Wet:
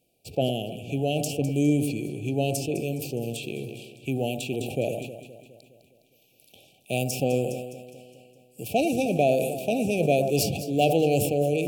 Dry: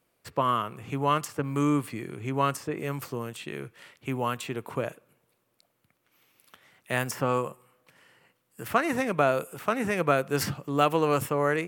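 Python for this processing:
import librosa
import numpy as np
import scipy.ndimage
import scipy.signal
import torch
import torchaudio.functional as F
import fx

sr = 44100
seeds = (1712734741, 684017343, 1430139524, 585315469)

p1 = fx.brickwall_bandstop(x, sr, low_hz=820.0, high_hz=2300.0)
p2 = p1 + fx.echo_alternate(p1, sr, ms=103, hz=1000.0, feedback_pct=76, wet_db=-11.0, dry=0)
p3 = fx.sustainer(p2, sr, db_per_s=46.0)
y = p3 * 10.0 ** (2.5 / 20.0)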